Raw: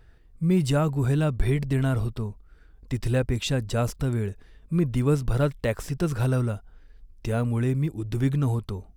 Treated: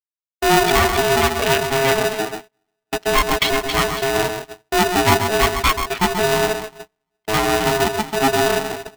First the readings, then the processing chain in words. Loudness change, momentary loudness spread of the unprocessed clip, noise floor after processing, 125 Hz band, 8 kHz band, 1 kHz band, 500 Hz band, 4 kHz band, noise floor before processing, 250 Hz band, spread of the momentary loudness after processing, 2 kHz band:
+8.0 dB, 7 LU, −81 dBFS, −5.0 dB, +16.5 dB, +19.5 dB, +11.0 dB, +18.0 dB, −54 dBFS, +2.0 dB, 9 LU, +18.0 dB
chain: spectral dynamics exaggerated over time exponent 3
high-pass filter 73 Hz 12 dB per octave
in parallel at −6.5 dB: fuzz pedal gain 43 dB, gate −51 dBFS
on the sum: meter weighting curve D
delay that swaps between a low-pass and a high-pass 134 ms, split 1,500 Hz, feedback 56%, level −6.5 dB
treble cut that deepens with the level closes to 2,200 Hz, closed at −12.5 dBFS
high-frequency loss of the air 360 metres
on a send: delay with a low-pass on its return 352 ms, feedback 30%, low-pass 580 Hz, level −15.5 dB
on the sum: noise gate −33 dBFS, range −35 dB
ring modulator with a square carrier 540 Hz
level +5 dB

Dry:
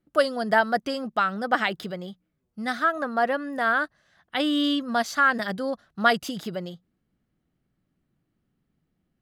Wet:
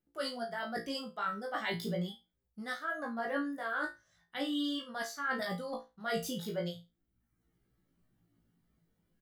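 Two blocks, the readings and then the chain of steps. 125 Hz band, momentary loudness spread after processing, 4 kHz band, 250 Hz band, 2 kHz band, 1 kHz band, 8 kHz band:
−3.0 dB, 7 LU, −9.5 dB, −10.0 dB, −12.5 dB, −14.5 dB, −6.0 dB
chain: reverb reduction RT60 0.86 s
high-shelf EQ 11,000 Hz +8.5 dB
notch filter 2,600 Hz, Q 11
reversed playback
downward compressor 12 to 1, threshold −34 dBFS, peak gain reduction 20.5 dB
reversed playback
chorus effect 0.39 Hz, delay 15 ms, depth 4.6 ms
double-tracking delay 29 ms −13 dB
on a send: flutter between parallel walls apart 3 metres, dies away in 0.25 s
on the sum: level +2.5 dB

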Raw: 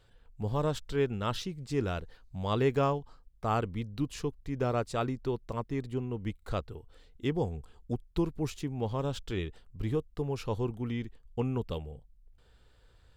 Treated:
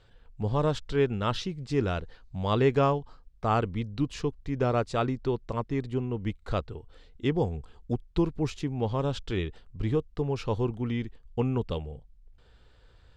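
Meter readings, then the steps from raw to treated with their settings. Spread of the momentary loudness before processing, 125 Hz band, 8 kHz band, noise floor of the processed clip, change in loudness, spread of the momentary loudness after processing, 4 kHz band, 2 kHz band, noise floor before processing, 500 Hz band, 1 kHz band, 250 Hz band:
8 LU, +4.0 dB, −0.5 dB, −58 dBFS, +4.0 dB, 8 LU, +3.5 dB, +4.0 dB, −62 dBFS, +4.0 dB, +4.0 dB, +4.0 dB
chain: low-pass filter 6,000 Hz 12 dB per octave
level +4 dB

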